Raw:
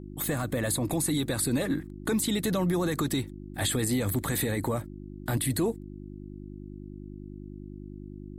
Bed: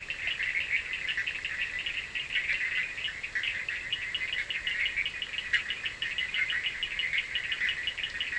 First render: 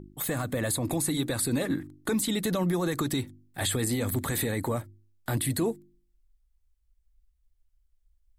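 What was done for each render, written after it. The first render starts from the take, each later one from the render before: de-hum 50 Hz, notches 7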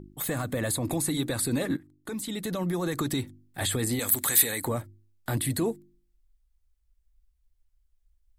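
1.77–3.06 fade in linear, from -14.5 dB; 3.99–4.65 tilt +3.5 dB/oct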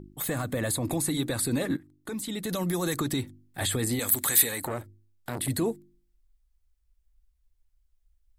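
2.49–2.97 high shelf 3800 Hz +11 dB; 4.49–5.48 core saturation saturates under 990 Hz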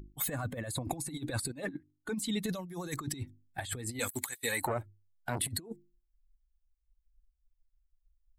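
per-bin expansion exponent 1.5; negative-ratio compressor -36 dBFS, ratio -0.5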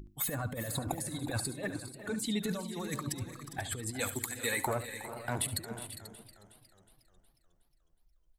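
on a send: tapped delay 71/405/488 ms -14/-13/-14.5 dB; on the sum: warbling echo 0.363 s, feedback 51%, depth 93 cents, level -15.5 dB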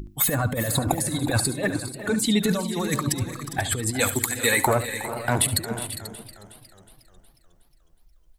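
gain +12 dB

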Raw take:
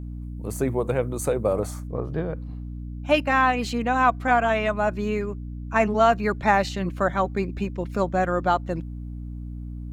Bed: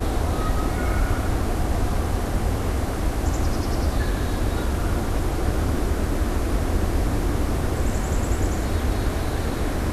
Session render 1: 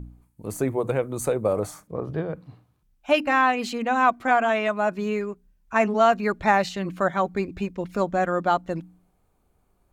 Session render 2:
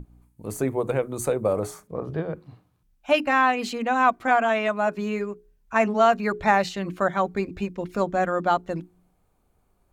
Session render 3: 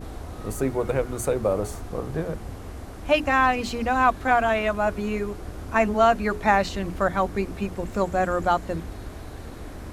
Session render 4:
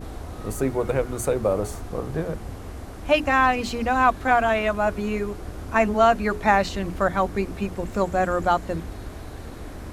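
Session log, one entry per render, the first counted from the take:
de-hum 60 Hz, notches 5
notches 60/120/180/240/300/360/420 Hz
add bed -13.5 dB
gain +1 dB

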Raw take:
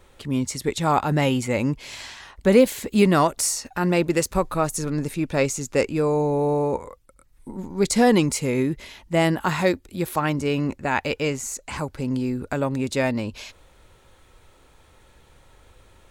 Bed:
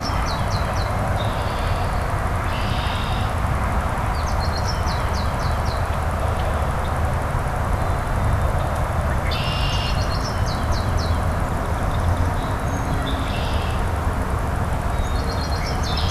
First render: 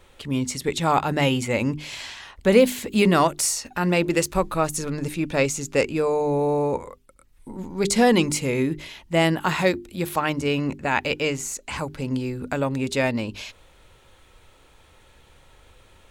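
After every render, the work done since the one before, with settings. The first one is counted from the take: bell 2900 Hz +4 dB 0.88 oct; notches 50/100/150/200/250/300/350/400 Hz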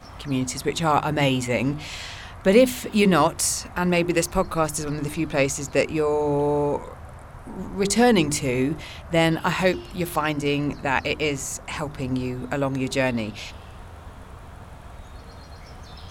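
add bed -19.5 dB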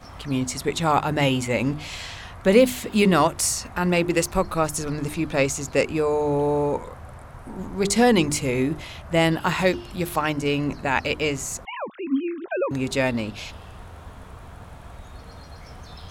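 11.65–12.71 sine-wave speech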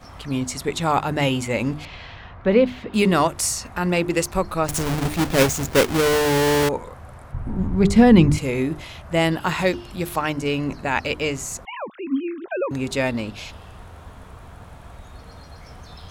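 1.85–2.94 air absorption 290 m; 4.68–6.69 half-waves squared off; 7.32–8.38 tone controls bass +14 dB, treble -10 dB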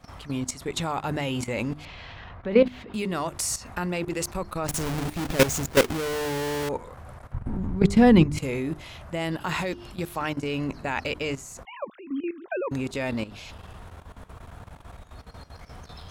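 level quantiser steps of 14 dB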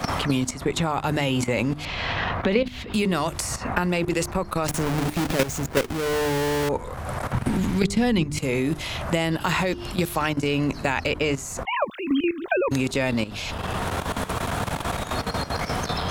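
in parallel at -3 dB: limiter -16.5 dBFS, peak gain reduction 10 dB; on the sum: three-band squash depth 100%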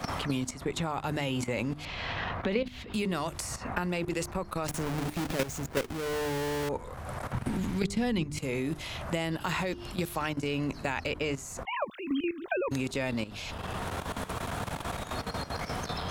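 gain -8 dB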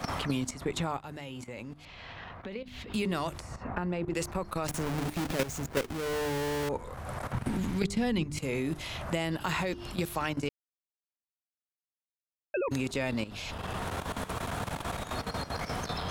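0.97–2.68 gain -10.5 dB; 3.39–4.15 LPF 1100 Hz 6 dB/oct; 10.49–12.54 mute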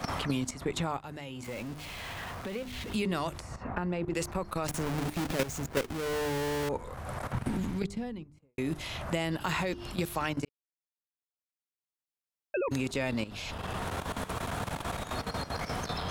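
1.44–2.94 zero-crossing step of -40 dBFS; 7.38–8.58 studio fade out; 10.45–12.56 fade in

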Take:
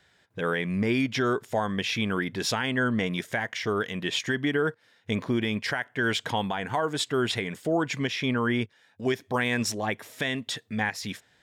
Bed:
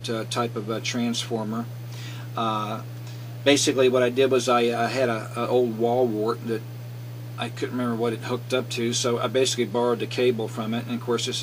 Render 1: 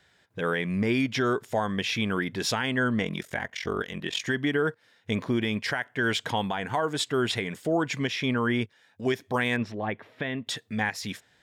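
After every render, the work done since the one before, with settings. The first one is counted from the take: 3.03–4.21 ring modulator 22 Hz; 9.56–10.47 air absorption 380 m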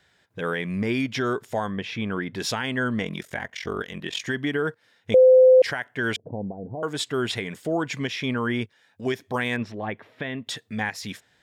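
1.68–2.33 LPF 1500 Hz -> 2500 Hz 6 dB/oct; 5.14–5.62 bleep 514 Hz -9.5 dBFS; 6.16–6.83 steep low-pass 620 Hz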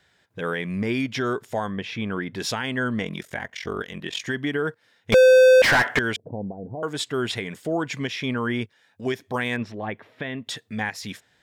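5.12–5.99 overdrive pedal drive 36 dB, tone 2400 Hz, clips at -9 dBFS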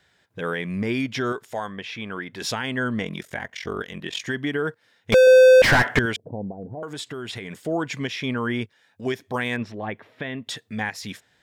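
1.32–2.42 low shelf 430 Hz -8.5 dB; 5.27–6.06 low shelf 230 Hz +10 dB; 6.61–7.57 compressor, threshold -29 dBFS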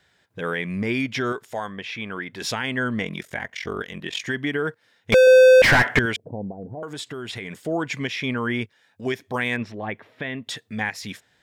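dynamic EQ 2200 Hz, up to +4 dB, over -40 dBFS, Q 2.3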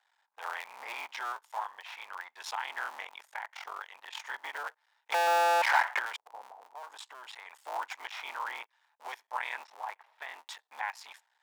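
cycle switcher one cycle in 3, muted; ladder high-pass 820 Hz, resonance 70%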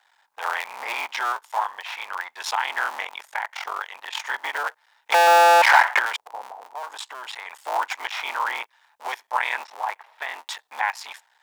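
gain +11.5 dB; limiter -3 dBFS, peak gain reduction 1.5 dB

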